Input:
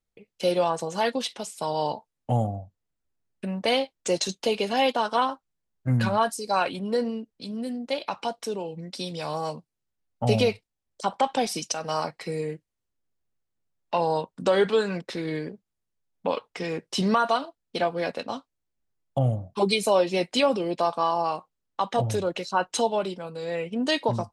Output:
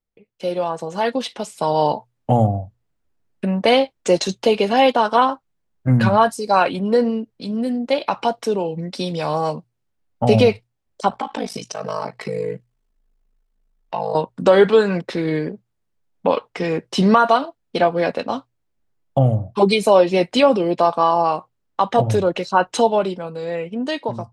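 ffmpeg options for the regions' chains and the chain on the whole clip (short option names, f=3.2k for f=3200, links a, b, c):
-filter_complex "[0:a]asettb=1/sr,asplit=3[a][b][c];[a]atrim=end=11.094[d];[b]atrim=start=11.09:end=14.15,asetpts=PTS-STARTPTS,afade=t=in:d=0.004:c=qsin,afade=t=out:st=3.056:d=0.004:c=qsin,aecho=1:1:4.6:0.88,atrim=end_sample=134946,acompressor=threshold=-33dB:ratio=2:attack=3.2:release=140:knee=1:detection=peak,aeval=exprs='val(0)*sin(2*PI*26*n/s)':c=same[e];[c]atrim=start=14.146[f];[d][e]acrossfade=d=0.004:c1=hsin:c2=qsin[g];[g][f]acrossfade=d=0.004:c1=qsin:c2=hsin,highshelf=f=3.3k:g=-9.5,bandreject=f=60:t=h:w=6,bandreject=f=120:t=h:w=6,dynaudnorm=f=180:g=13:m=11.5dB"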